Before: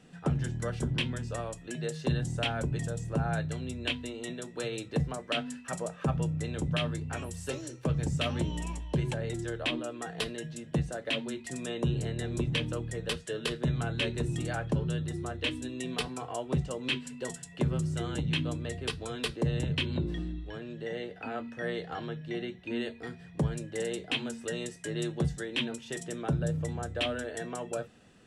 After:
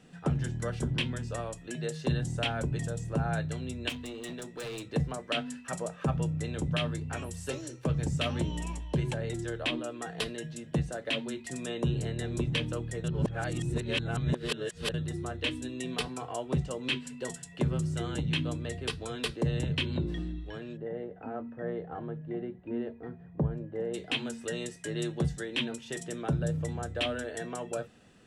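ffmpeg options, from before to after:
-filter_complex "[0:a]asettb=1/sr,asplit=3[a][b][c];[a]atrim=end=3.894[d];[b]atrim=start=3.89:end=4.83,asetpts=PTS-STARTPTS,afade=t=in:d=0.004:c=qsin,afade=t=out:st=0.936:d=0.004:c=qsin,volume=35.5dB,asoftclip=hard,volume=-35.5dB[e];[c]atrim=start=4.826[f];[d][e]acrossfade=d=0.004:c1=hsin:c2=qsin[g];[g][f]acrossfade=d=0.004:c1=qsin:c2=hsin,asplit=3[h][i][j];[h]afade=t=out:st=20.76:d=0.02[k];[i]lowpass=1k,afade=t=in:st=20.76:d=0.02,afade=t=out:st=23.93:d=0.02[l];[j]afade=t=in:st=23.93:d=0.02[m];[k][l][m]amix=inputs=3:normalize=0,asplit=3[n][o][p];[n]atrim=end=13.042[q];[o]atrim=start=13.038:end=14.942,asetpts=PTS-STARTPTS,areverse[r];[p]atrim=start=14.938[s];[q][r]acrossfade=d=0.004:c1=hsin:c2=hsin[t];[t][s]acrossfade=d=0.004:c1=hsin:c2=hsin"

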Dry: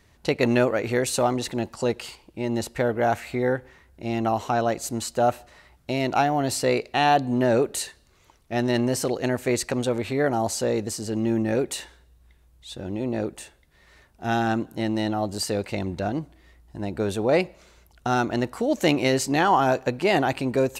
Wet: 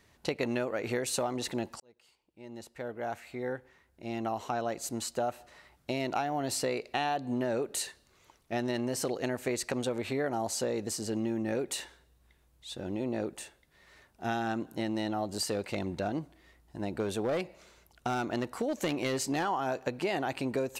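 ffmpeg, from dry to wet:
-filter_complex "[0:a]asplit=3[a][b][c];[a]afade=t=out:st=15.43:d=0.02[d];[b]aeval=exprs='clip(val(0),-1,0.119)':c=same,afade=t=in:st=15.43:d=0.02,afade=t=out:st=19.44:d=0.02[e];[c]afade=t=in:st=19.44:d=0.02[f];[d][e][f]amix=inputs=3:normalize=0,asplit=2[g][h];[g]atrim=end=1.8,asetpts=PTS-STARTPTS,afade=t=out:st=1.796:d=0.004:c=hsin[i];[h]atrim=start=1.8,asetpts=PTS-STARTPTS,afade=t=in:d=4.1[j];[i][j]concat=n=2:v=0:a=1,lowshelf=f=95:g=-10,acompressor=threshold=-25dB:ratio=6,volume=-3dB"

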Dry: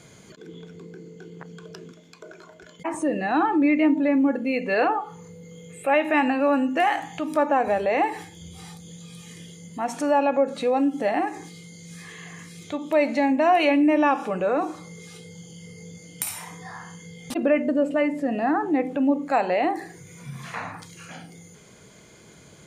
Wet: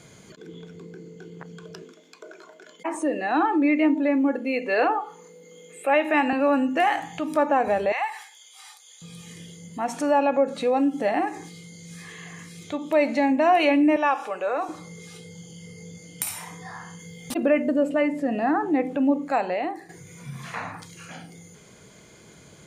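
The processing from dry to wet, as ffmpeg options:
-filter_complex "[0:a]asettb=1/sr,asplit=3[a][b][c];[a]atrim=end=1.824[d];[b]atrim=start=1.82:end=6.33,asetpts=PTS-STARTPTS,afade=t=in:d=0.004:c=qsin,afade=t=out:st=4.506:d=0.004:c=qsin,highpass=f=250:w=0.5412,highpass=f=250:w=1.3066[e];[c]atrim=start=6.326[f];[d][e]acrossfade=d=0.004:c1=hsin:c2=qsin[g];[g][f]acrossfade=d=0.004:c1=qsin:c2=hsin,asettb=1/sr,asplit=3[h][i][j];[h]atrim=end=7.924[k];[i]atrim=start=7.92:end=9.02,asetpts=PTS-STARTPTS,afade=t=in:d=0.004:c=qsin,afade=t=out:st=1.096:d=0.004:c=qsin,highpass=f=870:w=0.5412,highpass=f=870:w=1.3066[l];[j]atrim=start=9.016[m];[k][l]acrossfade=d=0.004:c1=hsin:c2=qsin[n];[n][m]acrossfade=d=0.004:c1=qsin:c2=hsin,asettb=1/sr,asplit=3[o][p][q];[o]atrim=end=13.964[r];[p]atrim=start=13.96:end=14.69,asetpts=PTS-STARTPTS,afade=t=in:d=0.004:c=qsin,afade=t=out:st=0.726:d=0.004:c=qsin,highpass=560[s];[q]atrim=start=14.686[t];[r][s]acrossfade=d=0.004:c1=hsin:c2=qsin[u];[u][t]acrossfade=d=0.004:c1=qsin:c2=hsin,asettb=1/sr,asplit=3[v][w][x];[v]atrim=end=16.994[y];[w]atrim=start=16.99:end=17.91,asetpts=PTS-STARTPTS,afade=t=in:d=0.004:c=qsin,afade=t=out:st=0.916:d=0.004:c=qsin,highshelf=f=12k:g=11.5[z];[x]atrim=start=17.906[aa];[y][z]acrossfade=d=0.004:c1=hsin:c2=qsin[ab];[ab][aa]acrossfade=d=0.004:c1=qsin:c2=hsin,asplit=2[ac][ad];[ac]atrim=end=19.89,asetpts=PTS-STARTPTS,afade=t=out:st=19.15:d=0.74:silence=0.316228[ae];[ad]atrim=start=19.89,asetpts=PTS-STARTPTS,afade=t=in:d=0.004:c=hsin:silence=0.316228[af];[ae][af]concat=n=2:v=0:a=1"

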